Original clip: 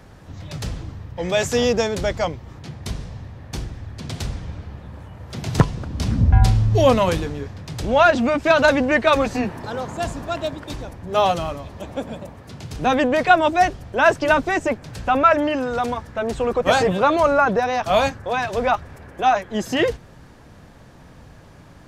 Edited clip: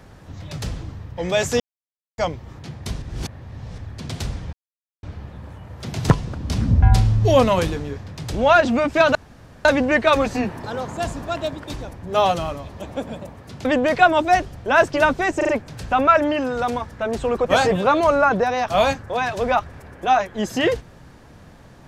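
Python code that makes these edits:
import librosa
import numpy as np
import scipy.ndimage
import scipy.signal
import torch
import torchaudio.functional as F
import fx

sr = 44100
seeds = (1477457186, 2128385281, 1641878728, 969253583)

y = fx.edit(x, sr, fx.silence(start_s=1.6, length_s=0.58),
    fx.reverse_span(start_s=3.02, length_s=0.76),
    fx.insert_silence(at_s=4.53, length_s=0.5),
    fx.insert_room_tone(at_s=8.65, length_s=0.5),
    fx.cut(start_s=12.65, length_s=0.28),
    fx.stutter(start_s=14.65, slice_s=0.04, count=4), tone=tone)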